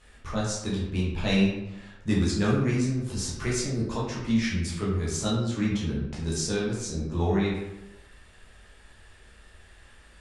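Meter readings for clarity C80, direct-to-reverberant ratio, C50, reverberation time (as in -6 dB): 5.0 dB, -7.0 dB, 1.5 dB, 0.95 s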